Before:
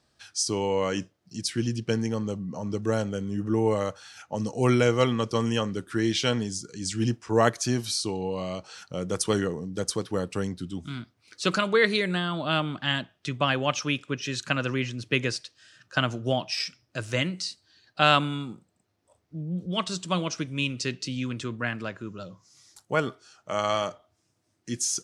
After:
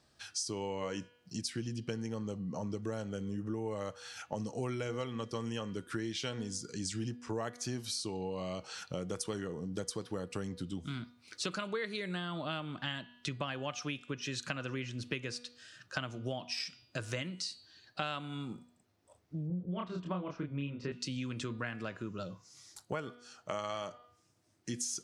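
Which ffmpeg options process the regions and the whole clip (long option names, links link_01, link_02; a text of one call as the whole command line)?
ffmpeg -i in.wav -filter_complex "[0:a]asettb=1/sr,asplit=3[link_01][link_02][link_03];[link_01]atrim=end=19.474[link_04];[link_02]atrim=start=19.47:end=20.92,asetpts=PTS-STARTPTS,afade=type=in:duration=0.004:curve=qsin,afade=type=out:start_time=1.446:duration=0.004:curve=qsin,lowpass=1500,asplit=2[link_05][link_06];[link_06]adelay=28,volume=-2dB[link_07];[link_05][link_07]amix=inputs=2:normalize=0,atrim=end_sample=63945[link_08];[link_03]atrim=start=20.916[link_09];[link_04][link_08]acrossfade=duration=0.004:curve1=hsin:curve2=qsin[link_10];[link_10][link_09]acrossfade=duration=0.004:curve1=qsin:curve2=hsin,bandreject=frequency=242.7:width_type=h:width=4,bandreject=frequency=485.4:width_type=h:width=4,bandreject=frequency=728.1:width_type=h:width=4,bandreject=frequency=970.8:width_type=h:width=4,bandreject=frequency=1213.5:width_type=h:width=4,bandreject=frequency=1456.2:width_type=h:width=4,bandreject=frequency=1698.9:width_type=h:width=4,bandreject=frequency=1941.6:width_type=h:width=4,bandreject=frequency=2184.3:width_type=h:width=4,bandreject=frequency=2427:width_type=h:width=4,bandreject=frequency=2669.7:width_type=h:width=4,bandreject=frequency=2912.4:width_type=h:width=4,bandreject=frequency=3155.1:width_type=h:width=4,bandreject=frequency=3397.8:width_type=h:width=4,bandreject=frequency=3640.5:width_type=h:width=4,bandreject=frequency=3883.2:width_type=h:width=4,bandreject=frequency=4125.9:width_type=h:width=4,bandreject=frequency=4368.6:width_type=h:width=4,bandreject=frequency=4611.3:width_type=h:width=4,bandreject=frequency=4854:width_type=h:width=4,acompressor=threshold=-35dB:ratio=6" out.wav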